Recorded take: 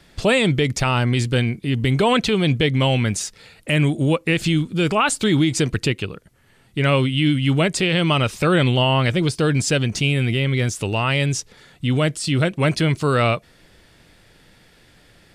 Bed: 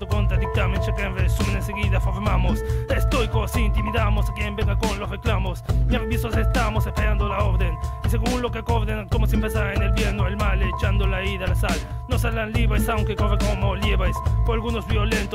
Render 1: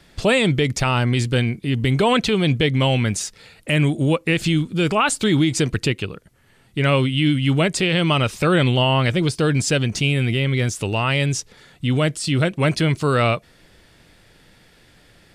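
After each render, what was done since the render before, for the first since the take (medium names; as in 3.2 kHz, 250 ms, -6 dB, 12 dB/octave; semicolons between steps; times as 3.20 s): no audible change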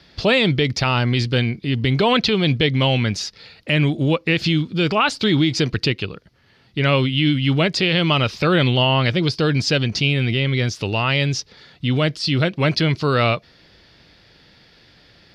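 high-pass 42 Hz; resonant high shelf 6.4 kHz -10.5 dB, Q 3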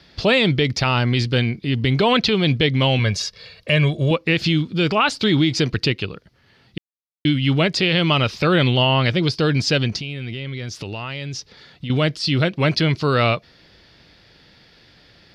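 2.99–4.11 s: comb 1.8 ms; 6.78–7.25 s: mute; 9.96–11.90 s: compression, threshold -26 dBFS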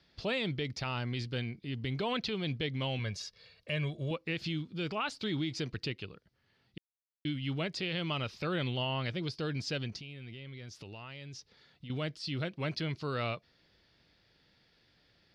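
trim -17 dB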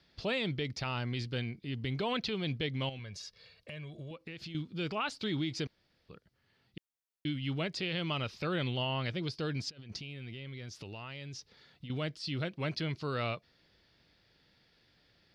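2.89–4.55 s: compression, threshold -41 dBFS; 5.67–6.09 s: room tone; 9.69–11.86 s: compressor with a negative ratio -42 dBFS, ratio -0.5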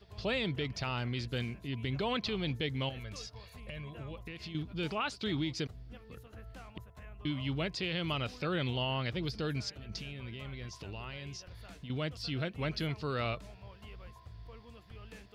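add bed -29 dB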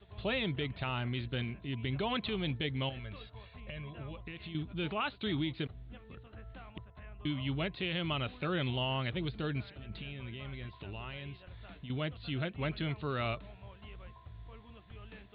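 steep low-pass 4 kHz 96 dB/octave; band-stop 480 Hz, Q 12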